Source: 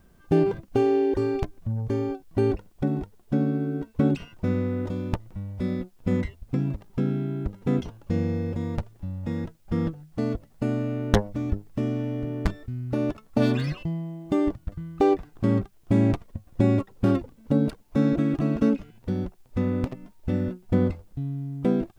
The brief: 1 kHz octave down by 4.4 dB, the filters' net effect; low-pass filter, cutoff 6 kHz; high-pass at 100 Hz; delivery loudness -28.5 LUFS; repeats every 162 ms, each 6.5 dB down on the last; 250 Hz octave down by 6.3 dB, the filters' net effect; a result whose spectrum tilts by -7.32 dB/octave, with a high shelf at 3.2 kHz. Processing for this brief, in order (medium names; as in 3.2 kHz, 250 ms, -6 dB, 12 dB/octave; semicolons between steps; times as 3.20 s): high-pass 100 Hz; low-pass 6 kHz; peaking EQ 250 Hz -7.5 dB; peaking EQ 1 kHz -6 dB; treble shelf 3.2 kHz +4 dB; feedback delay 162 ms, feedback 47%, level -6.5 dB; trim +2 dB